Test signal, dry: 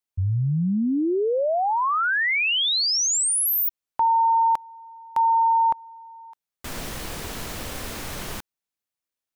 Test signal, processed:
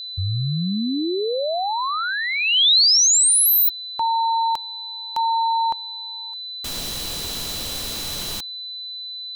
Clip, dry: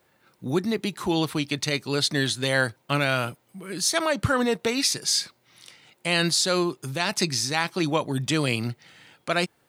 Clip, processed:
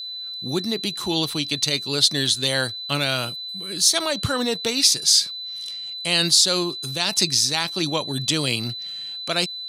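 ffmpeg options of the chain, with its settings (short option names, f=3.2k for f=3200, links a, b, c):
-af "aeval=exprs='val(0)+0.0126*sin(2*PI*4000*n/s)':c=same,highshelf=f=2.7k:t=q:w=1.5:g=7,volume=-1dB"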